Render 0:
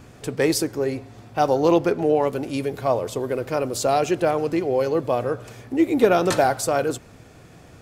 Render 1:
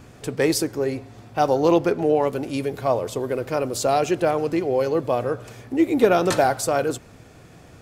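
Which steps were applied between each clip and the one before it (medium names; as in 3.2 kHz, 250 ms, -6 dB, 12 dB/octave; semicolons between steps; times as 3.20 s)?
no audible change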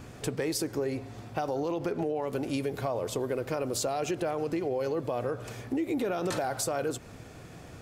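peak limiter -16 dBFS, peak gain reduction 10.5 dB; compression 4:1, threshold -28 dBFS, peak gain reduction 7.5 dB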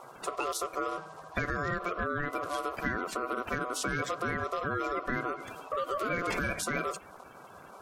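coarse spectral quantiser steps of 30 dB; dynamic bell 1.3 kHz, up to +7 dB, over -49 dBFS, Q 0.93; ring modulator 870 Hz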